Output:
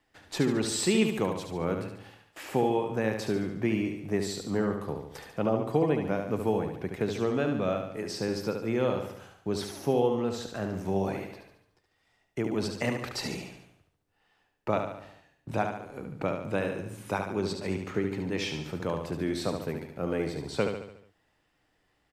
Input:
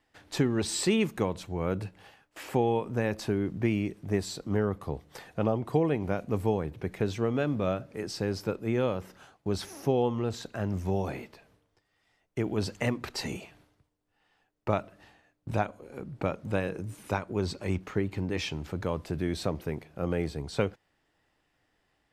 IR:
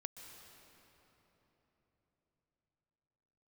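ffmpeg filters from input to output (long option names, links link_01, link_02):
-filter_complex "[0:a]aecho=1:1:72|144|216|288|360|432:0.501|0.256|0.13|0.0665|0.0339|0.0173,acrossover=split=120[link_01][link_02];[link_01]acompressor=threshold=-50dB:ratio=6[link_03];[link_03][link_02]amix=inputs=2:normalize=0"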